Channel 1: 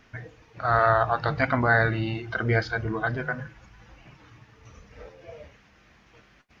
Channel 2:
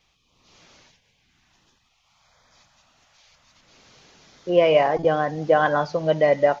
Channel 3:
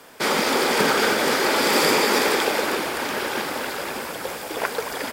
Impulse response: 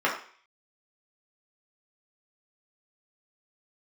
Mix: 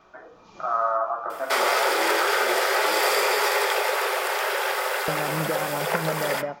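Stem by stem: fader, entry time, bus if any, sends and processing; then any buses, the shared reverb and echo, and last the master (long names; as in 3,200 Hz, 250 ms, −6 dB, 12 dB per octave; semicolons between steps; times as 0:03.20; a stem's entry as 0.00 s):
+3.0 dB, 0.00 s, bus A, send −11 dB, Chebyshev band-pass filter 340–1,200 Hz, order 3; spectral tilt +3 dB per octave; downward compressor 1.5 to 1, threshold −51 dBFS, peak gain reduction 11.5 dB
−2.5 dB, 0.00 s, muted 0:02.43–0:05.08, bus A, no send, no processing
+1.0 dB, 1.30 s, no bus, send −16 dB, Chebyshev high-pass filter 380 Hz, order 10; high-shelf EQ 11,000 Hz +5 dB; downward compressor 2 to 1, threshold −28 dBFS, peak gain reduction 7 dB
bus A: 0.0 dB, hollow resonant body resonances 200/2,400 Hz, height 12 dB; downward compressor, threshold −28 dBFS, peak gain reduction 13 dB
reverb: on, RT60 0.45 s, pre-delay 3 ms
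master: low-shelf EQ 340 Hz +3.5 dB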